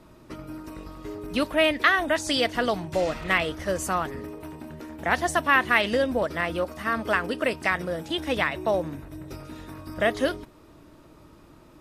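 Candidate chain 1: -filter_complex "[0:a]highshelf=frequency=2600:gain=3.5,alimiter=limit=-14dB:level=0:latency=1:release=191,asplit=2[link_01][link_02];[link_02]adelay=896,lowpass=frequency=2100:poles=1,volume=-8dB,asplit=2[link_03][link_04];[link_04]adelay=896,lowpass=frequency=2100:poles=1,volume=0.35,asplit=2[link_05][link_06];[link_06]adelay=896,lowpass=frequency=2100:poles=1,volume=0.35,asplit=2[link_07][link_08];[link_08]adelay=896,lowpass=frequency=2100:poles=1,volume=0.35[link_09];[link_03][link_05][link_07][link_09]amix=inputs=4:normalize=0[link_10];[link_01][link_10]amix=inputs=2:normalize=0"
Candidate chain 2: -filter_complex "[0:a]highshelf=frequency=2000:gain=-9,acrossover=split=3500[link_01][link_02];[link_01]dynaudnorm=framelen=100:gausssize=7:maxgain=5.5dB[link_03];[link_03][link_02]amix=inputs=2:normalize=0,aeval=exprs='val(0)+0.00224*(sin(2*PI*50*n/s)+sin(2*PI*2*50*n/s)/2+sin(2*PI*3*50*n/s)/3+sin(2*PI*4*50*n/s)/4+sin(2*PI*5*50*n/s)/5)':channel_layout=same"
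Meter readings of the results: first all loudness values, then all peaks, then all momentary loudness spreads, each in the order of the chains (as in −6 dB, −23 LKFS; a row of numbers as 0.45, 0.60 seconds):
−27.5, −22.0 LKFS; −12.0, −4.5 dBFS; 14, 16 LU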